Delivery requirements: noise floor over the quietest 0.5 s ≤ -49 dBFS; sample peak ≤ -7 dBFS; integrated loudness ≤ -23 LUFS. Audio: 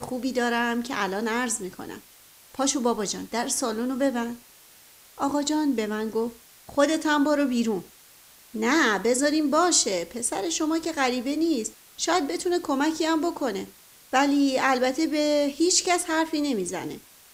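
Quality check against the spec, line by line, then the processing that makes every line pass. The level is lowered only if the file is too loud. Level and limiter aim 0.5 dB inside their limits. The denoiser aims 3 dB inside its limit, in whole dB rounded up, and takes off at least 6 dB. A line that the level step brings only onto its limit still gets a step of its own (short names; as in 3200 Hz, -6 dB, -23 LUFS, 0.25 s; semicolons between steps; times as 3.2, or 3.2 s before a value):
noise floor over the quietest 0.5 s -53 dBFS: OK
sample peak -7.5 dBFS: OK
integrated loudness -24.5 LUFS: OK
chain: none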